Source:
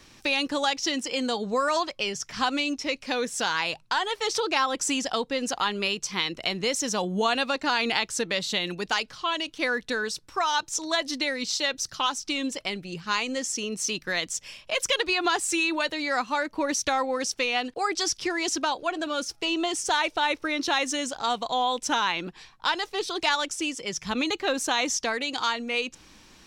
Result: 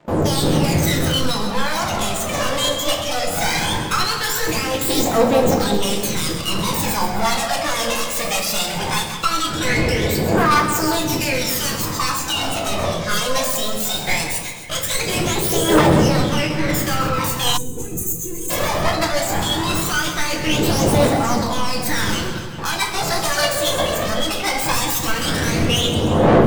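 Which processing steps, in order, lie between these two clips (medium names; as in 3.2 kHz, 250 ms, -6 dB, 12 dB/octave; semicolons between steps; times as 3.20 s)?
self-modulated delay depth 0.27 ms; wind noise 430 Hz -32 dBFS; high-pass 83 Hz 24 dB/octave; gate with hold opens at -29 dBFS; hum notches 60/120/180/240/300/360/420/480/540 Hz; peak limiter -18.5 dBFS, peak gain reduction 10.5 dB; waveshaping leveller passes 3; phaser 0.19 Hz, delay 1.9 ms, feedback 71%; two-band feedback delay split 2.5 kHz, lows 184 ms, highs 131 ms, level -9.5 dB; formant shift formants +4 st; simulated room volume 110 m³, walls mixed, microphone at 0.74 m; time-frequency box 17.57–18.50 s, 510–6100 Hz -25 dB; trim -2 dB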